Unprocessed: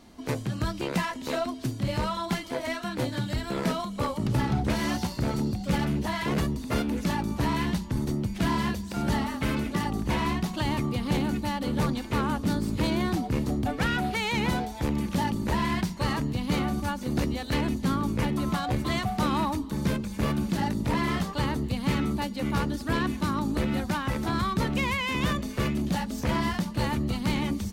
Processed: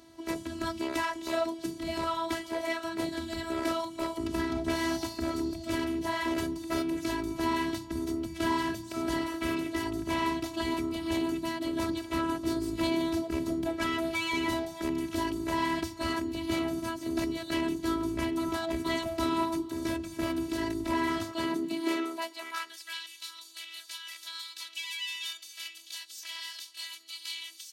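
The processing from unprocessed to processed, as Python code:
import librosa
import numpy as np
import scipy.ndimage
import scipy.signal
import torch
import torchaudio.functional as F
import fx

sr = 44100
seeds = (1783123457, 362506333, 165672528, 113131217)

y = fx.robotise(x, sr, hz=329.0)
y = fx.filter_sweep_highpass(y, sr, from_hz=71.0, to_hz=3400.0, start_s=21.13, end_s=23.01, q=1.4)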